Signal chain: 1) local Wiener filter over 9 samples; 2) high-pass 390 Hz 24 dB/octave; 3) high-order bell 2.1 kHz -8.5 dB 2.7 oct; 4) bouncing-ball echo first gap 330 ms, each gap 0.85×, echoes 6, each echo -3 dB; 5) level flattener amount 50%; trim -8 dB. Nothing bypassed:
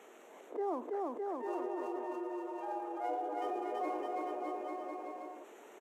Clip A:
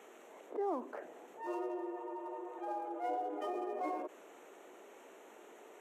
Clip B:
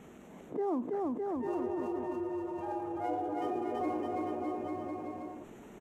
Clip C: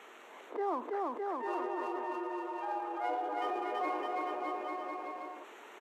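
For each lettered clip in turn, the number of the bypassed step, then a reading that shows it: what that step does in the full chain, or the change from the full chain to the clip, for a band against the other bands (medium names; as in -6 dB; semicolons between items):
4, momentary loudness spread change +9 LU; 2, 250 Hz band +6.5 dB; 3, 2 kHz band +6.0 dB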